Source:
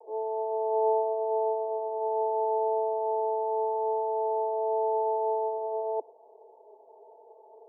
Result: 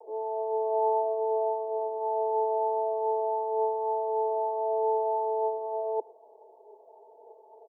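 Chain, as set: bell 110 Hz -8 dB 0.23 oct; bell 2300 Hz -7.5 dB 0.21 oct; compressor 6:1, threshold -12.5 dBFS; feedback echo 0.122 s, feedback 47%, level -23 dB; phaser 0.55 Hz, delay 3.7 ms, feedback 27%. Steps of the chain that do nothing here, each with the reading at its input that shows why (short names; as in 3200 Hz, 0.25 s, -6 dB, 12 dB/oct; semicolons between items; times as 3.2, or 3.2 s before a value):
bell 110 Hz: input band starts at 430 Hz; bell 2300 Hz: input band ends at 910 Hz; compressor, threshold -12.5 dBFS: input peak -16.0 dBFS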